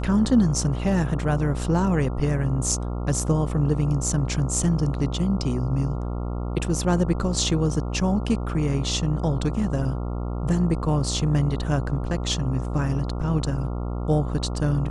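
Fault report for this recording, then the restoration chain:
mains buzz 60 Hz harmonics 23 −28 dBFS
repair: hum removal 60 Hz, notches 23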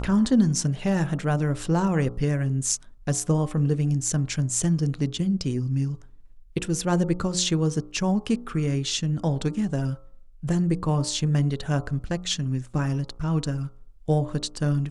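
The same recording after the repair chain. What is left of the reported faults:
none of them is left

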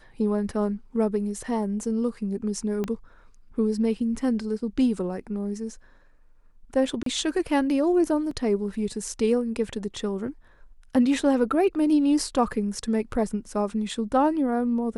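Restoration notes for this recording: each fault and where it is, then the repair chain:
0:02.84: click −17 dBFS
0:07.03–0:07.06: drop-out 33 ms
0:08.31: drop-out 3.1 ms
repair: click removal
repair the gap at 0:07.03, 33 ms
repair the gap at 0:08.31, 3.1 ms

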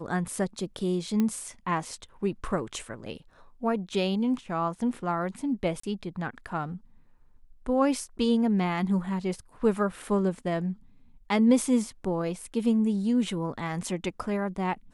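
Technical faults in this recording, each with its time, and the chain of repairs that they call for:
0:01.20: click −15 dBFS
0:05.80–0:05.83: drop-out 34 ms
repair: click removal
repair the gap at 0:05.80, 34 ms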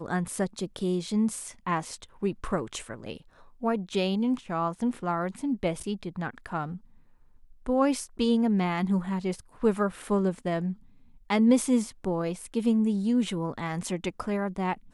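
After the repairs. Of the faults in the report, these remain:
none of them is left

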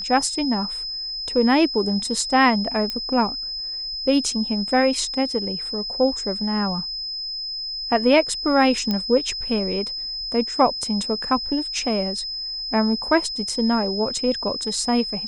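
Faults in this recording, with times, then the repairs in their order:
whistle 5,100 Hz −27 dBFS
0:02.90: click −13 dBFS
0:08.91: click −11 dBFS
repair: click removal
notch filter 5,100 Hz, Q 30

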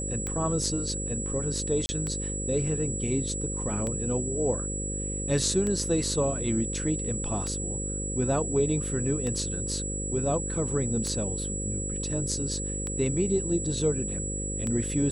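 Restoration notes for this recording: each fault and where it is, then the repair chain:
mains buzz 50 Hz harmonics 11 −34 dBFS
scratch tick 33 1/3 rpm −19 dBFS
whistle 7,800 Hz −33 dBFS
0:01.86–0:01.89: drop-out 30 ms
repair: click removal
hum removal 50 Hz, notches 11
notch filter 7,800 Hz, Q 30
repair the gap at 0:01.86, 30 ms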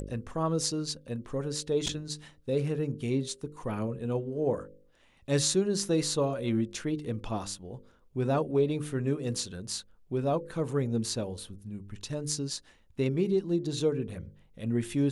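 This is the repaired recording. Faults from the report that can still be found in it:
none of them is left

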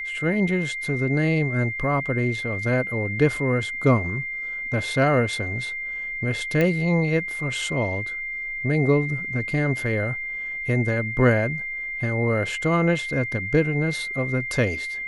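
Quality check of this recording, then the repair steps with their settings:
whistle 2,100 Hz −28 dBFS
0:06.61: click −11 dBFS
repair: click removal
notch filter 2,100 Hz, Q 30

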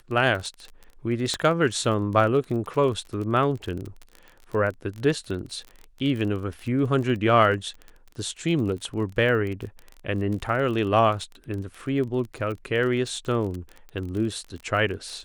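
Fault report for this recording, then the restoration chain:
surface crackle 28 per second −31 dBFS
0:01.34: click −14 dBFS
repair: click removal

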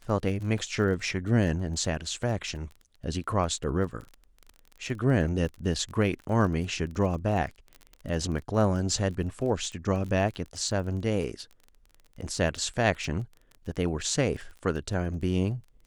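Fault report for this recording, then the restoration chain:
surface crackle 25 per second −36 dBFS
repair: click removal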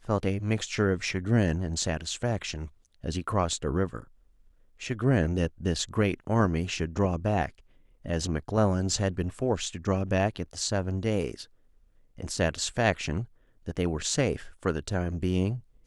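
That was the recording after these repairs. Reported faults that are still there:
none of them is left

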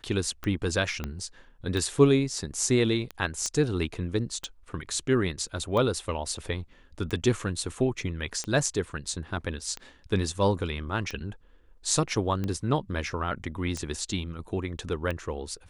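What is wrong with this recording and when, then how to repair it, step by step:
scratch tick 45 rpm −19 dBFS
0:01.04: click −18 dBFS
0:03.46: click −17 dBFS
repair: click removal

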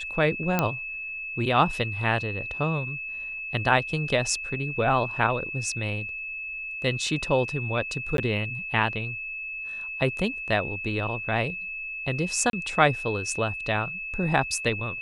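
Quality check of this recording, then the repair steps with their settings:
whistle 2,600 Hz −32 dBFS
0:00.59: click −8 dBFS
0:08.17–0:08.18: drop-out 12 ms
0:12.50–0:12.53: drop-out 32 ms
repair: click removal
notch filter 2,600 Hz, Q 30
repair the gap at 0:08.17, 12 ms
repair the gap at 0:12.50, 32 ms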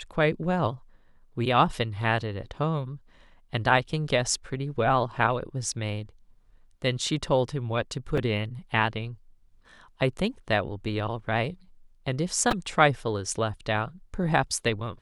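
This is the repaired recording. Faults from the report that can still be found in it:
none of them is left

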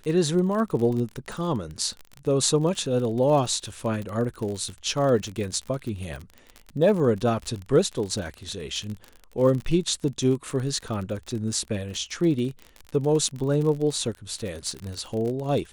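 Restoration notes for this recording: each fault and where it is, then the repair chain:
surface crackle 41 per second −30 dBFS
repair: click removal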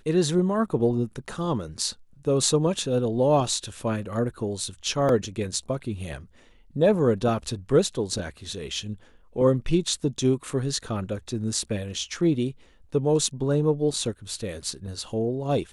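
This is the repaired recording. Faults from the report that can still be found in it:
none of them is left

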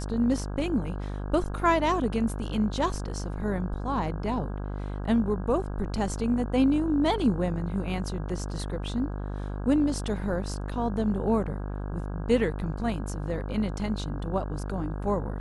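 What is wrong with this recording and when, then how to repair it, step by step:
mains buzz 50 Hz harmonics 33 −33 dBFS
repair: hum removal 50 Hz, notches 33

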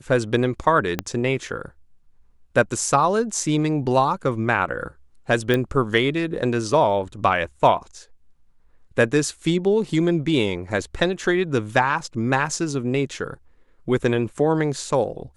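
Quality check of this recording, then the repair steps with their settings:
0:00.99: click −8 dBFS
0:05.54: click −9 dBFS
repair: click removal

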